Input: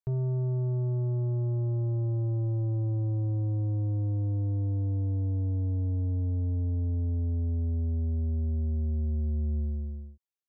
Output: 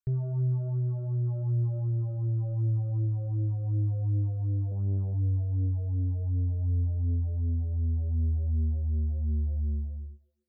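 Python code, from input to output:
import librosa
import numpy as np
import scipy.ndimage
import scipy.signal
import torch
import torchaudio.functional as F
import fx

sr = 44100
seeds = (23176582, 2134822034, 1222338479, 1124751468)

p1 = x + fx.echo_banded(x, sr, ms=127, feedback_pct=49, hz=410.0, wet_db=-10, dry=0)
p2 = fx.phaser_stages(p1, sr, stages=8, low_hz=270.0, high_hz=1000.0, hz=2.7, feedback_pct=40)
y = fx.doppler_dist(p2, sr, depth_ms=0.58, at=(4.71, 5.14))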